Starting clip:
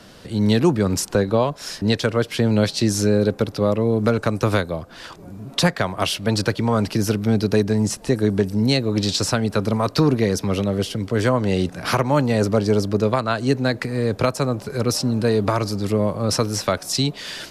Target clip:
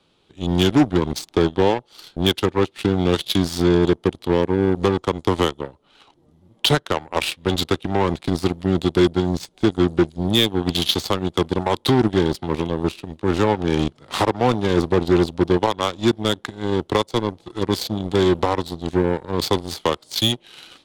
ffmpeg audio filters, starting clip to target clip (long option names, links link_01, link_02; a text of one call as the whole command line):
ffmpeg -i in.wav -filter_complex "[0:a]equalizer=frequency=400:width_type=o:width=0.67:gain=7,equalizer=frequency=1000:width_type=o:width=0.67:gain=6,equalizer=frequency=4000:width_type=o:width=0.67:gain=9,asplit=2[link_01][link_02];[link_02]asoftclip=type=hard:threshold=-11dB,volume=-6dB[link_03];[link_01][link_03]amix=inputs=2:normalize=0,aeval=exprs='1*(cos(1*acos(clip(val(0)/1,-1,1)))-cos(1*PI/2))+0.126*(cos(7*acos(clip(val(0)/1,-1,1)))-cos(7*PI/2))':channel_layout=same,asetrate=37044,aresample=44100,volume=-6dB" out.wav